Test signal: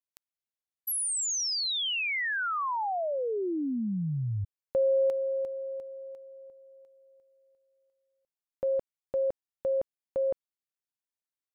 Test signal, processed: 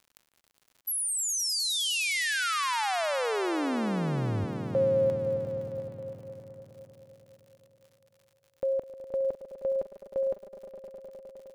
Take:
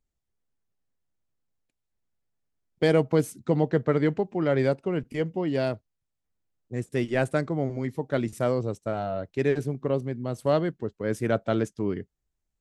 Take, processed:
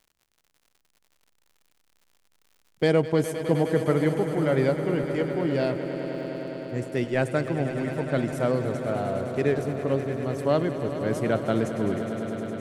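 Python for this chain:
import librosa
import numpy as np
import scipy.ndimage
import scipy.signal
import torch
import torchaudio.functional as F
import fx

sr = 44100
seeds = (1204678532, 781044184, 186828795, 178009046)

y = fx.echo_swell(x, sr, ms=103, loudest=5, wet_db=-13.0)
y = fx.dmg_crackle(y, sr, seeds[0], per_s=100.0, level_db=-48.0)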